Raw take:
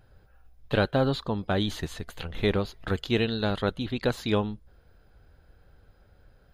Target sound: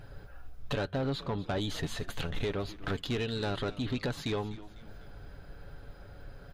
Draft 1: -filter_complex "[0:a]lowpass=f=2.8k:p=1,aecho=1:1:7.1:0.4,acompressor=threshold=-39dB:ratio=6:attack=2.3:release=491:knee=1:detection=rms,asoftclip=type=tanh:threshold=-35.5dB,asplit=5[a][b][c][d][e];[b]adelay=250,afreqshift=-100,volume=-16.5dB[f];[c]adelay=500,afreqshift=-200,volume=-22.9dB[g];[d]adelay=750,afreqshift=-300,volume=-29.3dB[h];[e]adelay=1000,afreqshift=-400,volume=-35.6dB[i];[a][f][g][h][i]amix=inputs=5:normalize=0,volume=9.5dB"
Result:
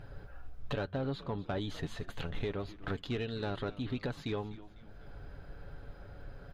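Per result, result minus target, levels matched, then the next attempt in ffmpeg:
8000 Hz band -7.5 dB; compressor: peak gain reduction +5 dB
-filter_complex "[0:a]lowpass=f=8.8k:p=1,aecho=1:1:7.1:0.4,acompressor=threshold=-39dB:ratio=6:attack=2.3:release=491:knee=1:detection=rms,asoftclip=type=tanh:threshold=-35.5dB,asplit=5[a][b][c][d][e];[b]adelay=250,afreqshift=-100,volume=-16.5dB[f];[c]adelay=500,afreqshift=-200,volume=-22.9dB[g];[d]adelay=750,afreqshift=-300,volume=-29.3dB[h];[e]adelay=1000,afreqshift=-400,volume=-35.6dB[i];[a][f][g][h][i]amix=inputs=5:normalize=0,volume=9.5dB"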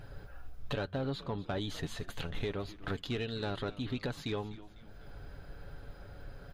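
compressor: peak gain reduction +5 dB
-filter_complex "[0:a]lowpass=f=8.8k:p=1,aecho=1:1:7.1:0.4,acompressor=threshold=-33dB:ratio=6:attack=2.3:release=491:knee=1:detection=rms,asoftclip=type=tanh:threshold=-35.5dB,asplit=5[a][b][c][d][e];[b]adelay=250,afreqshift=-100,volume=-16.5dB[f];[c]adelay=500,afreqshift=-200,volume=-22.9dB[g];[d]adelay=750,afreqshift=-300,volume=-29.3dB[h];[e]adelay=1000,afreqshift=-400,volume=-35.6dB[i];[a][f][g][h][i]amix=inputs=5:normalize=0,volume=9.5dB"

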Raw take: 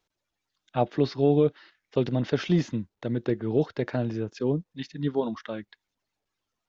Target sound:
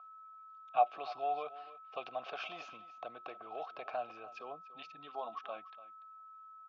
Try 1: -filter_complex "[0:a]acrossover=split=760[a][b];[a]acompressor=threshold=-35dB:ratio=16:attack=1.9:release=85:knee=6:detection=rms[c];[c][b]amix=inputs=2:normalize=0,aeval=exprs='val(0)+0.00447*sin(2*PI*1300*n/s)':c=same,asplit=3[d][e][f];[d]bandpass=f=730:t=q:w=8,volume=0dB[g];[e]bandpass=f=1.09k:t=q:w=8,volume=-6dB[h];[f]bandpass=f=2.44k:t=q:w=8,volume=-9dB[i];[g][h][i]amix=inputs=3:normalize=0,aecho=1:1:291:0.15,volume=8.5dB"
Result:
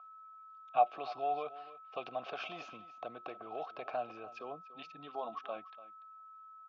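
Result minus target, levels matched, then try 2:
compressor: peak gain reduction -7 dB
-filter_complex "[0:a]acrossover=split=760[a][b];[a]acompressor=threshold=-42.5dB:ratio=16:attack=1.9:release=85:knee=6:detection=rms[c];[c][b]amix=inputs=2:normalize=0,aeval=exprs='val(0)+0.00447*sin(2*PI*1300*n/s)':c=same,asplit=3[d][e][f];[d]bandpass=f=730:t=q:w=8,volume=0dB[g];[e]bandpass=f=1.09k:t=q:w=8,volume=-6dB[h];[f]bandpass=f=2.44k:t=q:w=8,volume=-9dB[i];[g][h][i]amix=inputs=3:normalize=0,aecho=1:1:291:0.15,volume=8.5dB"

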